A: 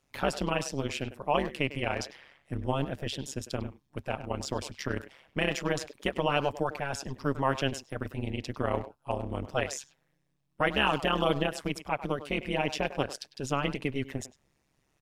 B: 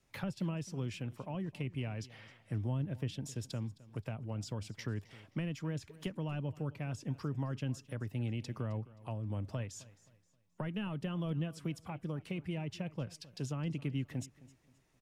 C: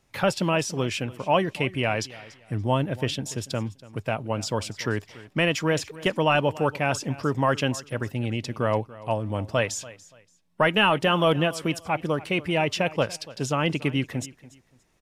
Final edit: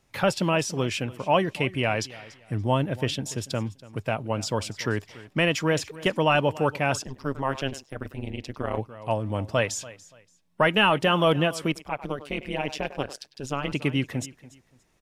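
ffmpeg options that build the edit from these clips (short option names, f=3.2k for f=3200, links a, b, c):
-filter_complex "[0:a]asplit=2[a][b];[2:a]asplit=3[c][d][e];[c]atrim=end=7.022[f];[a]atrim=start=7.018:end=8.782[g];[d]atrim=start=8.778:end=11.722[h];[b]atrim=start=11.718:end=13.722[i];[e]atrim=start=13.718[j];[f][g]acrossfade=d=0.004:c1=hsin:c2=hsin[k];[k][h]acrossfade=d=0.004:c1=hsin:c2=hsin[l];[l][i]acrossfade=d=0.004:c1=hsin:c2=hsin[m];[m][j]acrossfade=d=0.004:c1=hsin:c2=hsin"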